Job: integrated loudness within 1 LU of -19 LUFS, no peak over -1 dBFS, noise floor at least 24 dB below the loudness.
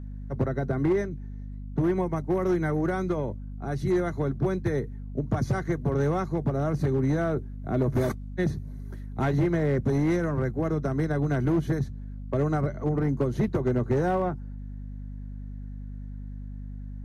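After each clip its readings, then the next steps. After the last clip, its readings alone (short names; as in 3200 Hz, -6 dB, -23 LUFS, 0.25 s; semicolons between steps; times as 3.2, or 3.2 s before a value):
clipped 1.4%; flat tops at -18.5 dBFS; hum 50 Hz; harmonics up to 250 Hz; hum level -35 dBFS; loudness -27.5 LUFS; peak -18.5 dBFS; loudness target -19.0 LUFS
-> clip repair -18.5 dBFS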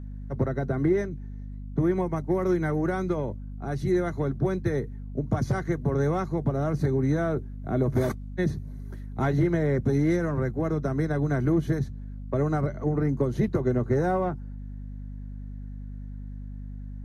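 clipped 0.0%; hum 50 Hz; harmonics up to 250 Hz; hum level -35 dBFS
-> notches 50/100/150/200/250 Hz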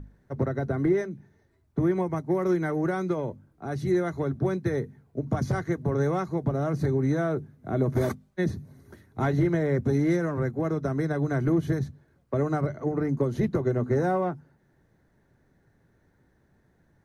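hum none; loudness -27.5 LUFS; peak -13.5 dBFS; loudness target -19.0 LUFS
-> gain +8.5 dB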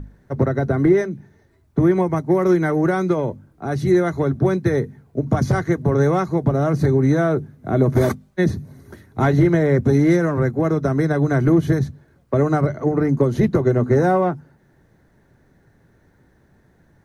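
loudness -19.0 LUFS; peak -5.0 dBFS; noise floor -58 dBFS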